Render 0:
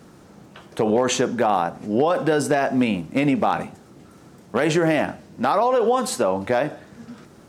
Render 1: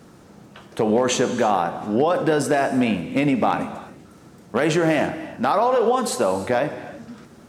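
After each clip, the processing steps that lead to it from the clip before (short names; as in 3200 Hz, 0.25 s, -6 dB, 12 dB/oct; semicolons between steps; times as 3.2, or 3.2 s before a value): non-linear reverb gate 0.36 s flat, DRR 10.5 dB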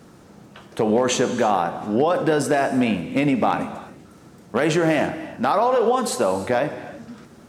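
nothing audible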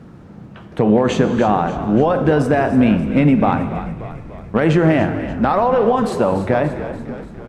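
tone controls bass +9 dB, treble -14 dB; on a send: frequency-shifting echo 0.29 s, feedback 60%, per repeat -49 Hz, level -12.5 dB; on the sum: gain +2.5 dB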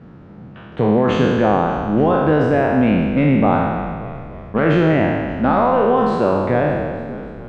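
spectral trails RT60 1.65 s; LPF 3500 Hz 12 dB/oct; gain -3.5 dB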